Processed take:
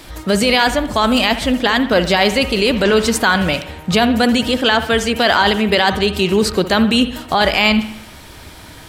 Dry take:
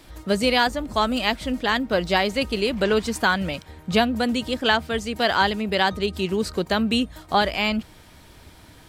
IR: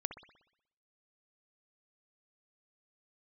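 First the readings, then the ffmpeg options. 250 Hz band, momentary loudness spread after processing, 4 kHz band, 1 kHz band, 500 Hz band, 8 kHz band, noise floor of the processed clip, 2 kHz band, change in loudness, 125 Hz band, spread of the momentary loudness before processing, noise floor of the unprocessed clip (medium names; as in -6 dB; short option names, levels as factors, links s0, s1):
+8.5 dB, 4 LU, +8.5 dB, +6.0 dB, +7.5 dB, +11.5 dB, -38 dBFS, +7.5 dB, +8.0 dB, +8.0 dB, 5 LU, -49 dBFS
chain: -filter_complex "[0:a]alimiter=limit=0.168:level=0:latency=1:release=10,asplit=2[s0][s1];[1:a]atrim=start_sample=2205,lowshelf=f=490:g=-6.5[s2];[s1][s2]afir=irnorm=-1:irlink=0,volume=1.88[s3];[s0][s3]amix=inputs=2:normalize=0,volume=1.58"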